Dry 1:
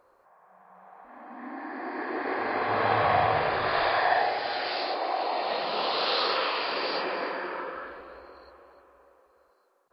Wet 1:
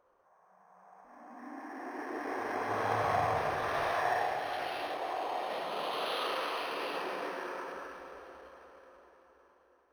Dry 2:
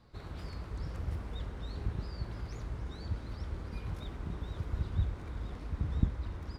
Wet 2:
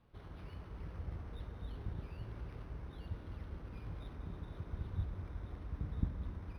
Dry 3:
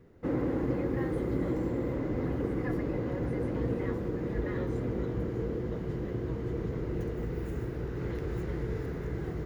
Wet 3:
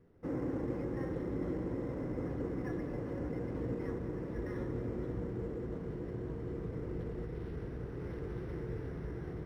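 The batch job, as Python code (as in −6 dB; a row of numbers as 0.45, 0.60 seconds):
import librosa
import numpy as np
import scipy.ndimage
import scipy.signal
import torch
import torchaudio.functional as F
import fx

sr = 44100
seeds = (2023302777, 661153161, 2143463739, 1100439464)

y = fx.rev_plate(x, sr, seeds[0], rt60_s=4.9, hf_ratio=0.8, predelay_ms=0, drr_db=6.0)
y = np.interp(np.arange(len(y)), np.arange(len(y))[::6], y[::6])
y = F.gain(torch.from_numpy(y), -7.0).numpy()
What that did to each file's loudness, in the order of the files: −7.5, −6.5, −6.0 LU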